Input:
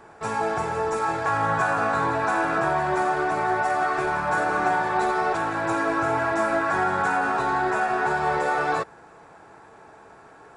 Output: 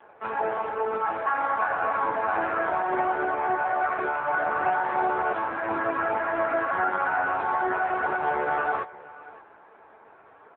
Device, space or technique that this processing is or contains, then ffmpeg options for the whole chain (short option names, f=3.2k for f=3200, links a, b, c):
satellite phone: -af "highpass=310,lowpass=3.2k,aecho=1:1:578:0.112" -ar 8000 -c:a libopencore_amrnb -b:a 5900